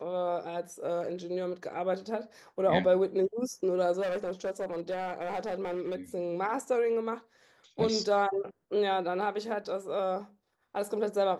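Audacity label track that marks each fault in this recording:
4.010000	5.950000	clipping −28.5 dBFS

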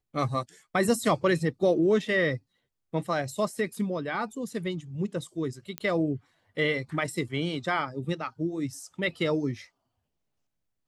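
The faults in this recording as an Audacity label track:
5.780000	5.780000	click −16 dBFS

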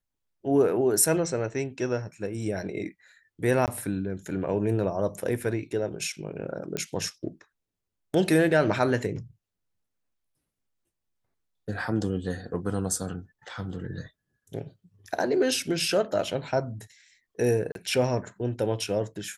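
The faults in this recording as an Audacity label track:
3.660000	3.680000	drop-out 18 ms
6.770000	6.770000	click −15 dBFS
17.720000	17.750000	drop-out 32 ms

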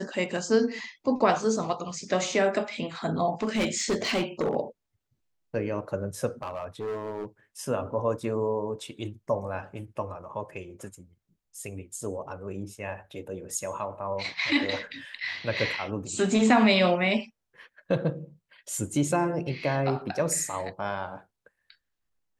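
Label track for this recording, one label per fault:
3.420000	4.550000	clipping −21.5 dBFS
6.420000	7.260000	clipping −29 dBFS

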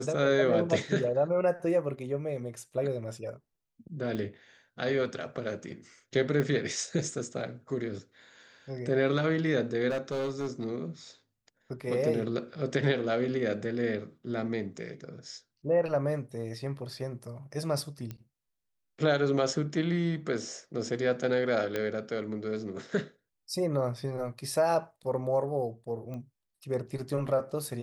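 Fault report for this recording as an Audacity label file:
4.150000	4.150000	click −24 dBFS
6.400000	6.400000	click −18 dBFS
9.890000	10.670000	clipping −27.5 dBFS
18.110000	18.110000	click −25 dBFS
21.760000	21.760000	click −17 dBFS
26.140000	26.140000	click −29 dBFS

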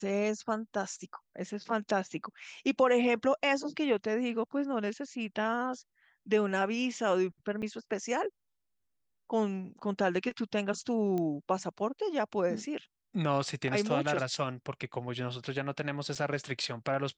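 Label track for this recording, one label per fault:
7.620000	7.630000	drop-out 6 ms
11.180000	11.180000	click −22 dBFS
16.150000	16.160000	drop-out 5.5 ms

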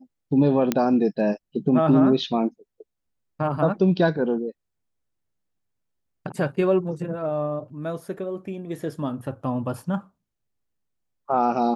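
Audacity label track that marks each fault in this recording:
0.720000	0.720000	click −7 dBFS

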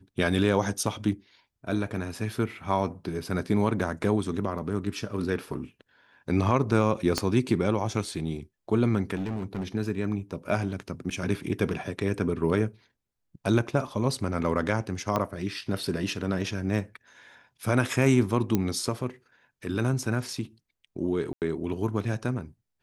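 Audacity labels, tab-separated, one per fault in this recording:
7.180000	7.180000	click −10 dBFS
9.150000	9.640000	clipping −27 dBFS
11.100000	11.110000	drop-out 7.5 ms
15.160000	15.160000	click −13 dBFS
18.550000	18.550000	click −11 dBFS
21.330000	21.420000	drop-out 88 ms

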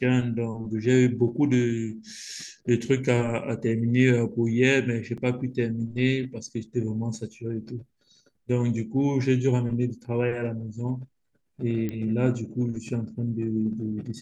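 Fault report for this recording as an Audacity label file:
5.170000	5.180000	drop-out 6.3 ms
11.890000	11.890000	click −19 dBFS

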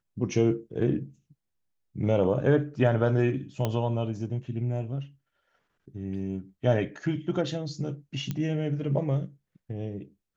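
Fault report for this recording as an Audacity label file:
3.650000	3.650000	click −14 dBFS
8.310000	8.310000	click −18 dBFS

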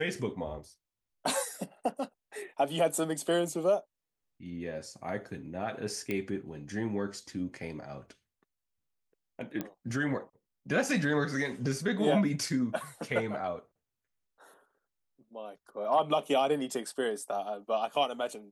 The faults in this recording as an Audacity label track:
6.110000	6.110000	click −20 dBFS
9.610000	9.610000	click −20 dBFS

